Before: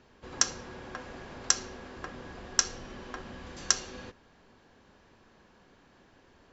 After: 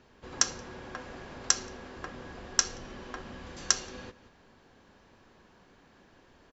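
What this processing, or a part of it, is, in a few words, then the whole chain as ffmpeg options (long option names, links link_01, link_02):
ducked delay: -filter_complex "[0:a]asplit=3[link_01][link_02][link_03];[link_02]adelay=177,volume=-8dB[link_04];[link_03]apad=whole_len=295355[link_05];[link_04][link_05]sidechaincompress=threshold=-53dB:ratio=8:attack=21:release=294[link_06];[link_01][link_06]amix=inputs=2:normalize=0"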